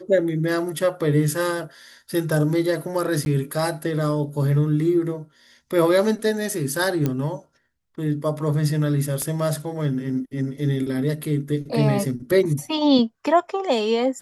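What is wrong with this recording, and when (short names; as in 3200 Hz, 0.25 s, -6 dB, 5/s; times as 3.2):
3.25–3.26 gap
7.06 pop -10 dBFS
9.22 pop -15 dBFS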